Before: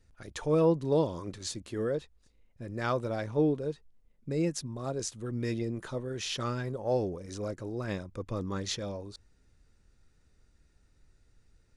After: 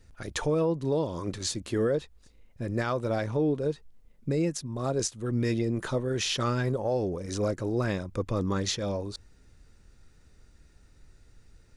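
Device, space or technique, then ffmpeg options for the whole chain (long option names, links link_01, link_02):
stacked limiters: -af "alimiter=limit=-22dB:level=0:latency=1:release=443,alimiter=level_in=3dB:limit=-24dB:level=0:latency=1:release=221,volume=-3dB,volume=8dB"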